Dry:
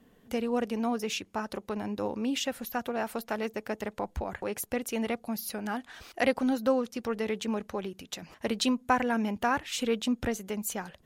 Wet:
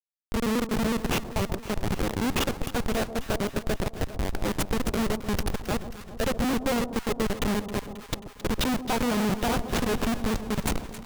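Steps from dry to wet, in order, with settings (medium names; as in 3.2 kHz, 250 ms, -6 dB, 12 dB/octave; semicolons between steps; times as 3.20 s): pitch shift switched off and on -1.5 st, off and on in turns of 92 ms; Schmitt trigger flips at -29.5 dBFS; echo whose repeats swap between lows and highs 134 ms, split 940 Hz, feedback 79%, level -11 dB; trim +7.5 dB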